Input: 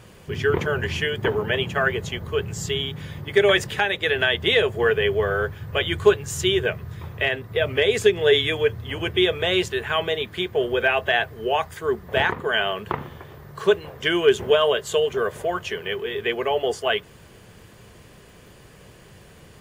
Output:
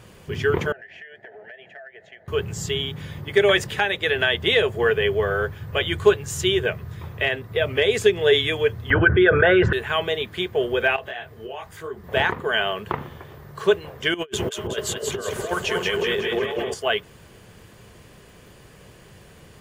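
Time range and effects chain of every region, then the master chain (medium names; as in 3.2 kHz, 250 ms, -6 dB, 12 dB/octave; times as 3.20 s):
0.72–2.28 s: two resonant band-passes 1.1 kHz, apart 1.4 oct + compression 12:1, threshold -38 dBFS
8.90–9.73 s: resonances exaggerated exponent 1.5 + resonant low-pass 1.5 kHz, resonance Q 10 + level flattener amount 70%
10.96–12.04 s: compression 5:1, threshold -26 dBFS + detune thickener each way 41 cents
14.14–16.74 s: compressor with a negative ratio -27 dBFS, ratio -0.5 + two-band feedback delay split 1 kHz, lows 246 ms, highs 183 ms, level -3.5 dB
whole clip: none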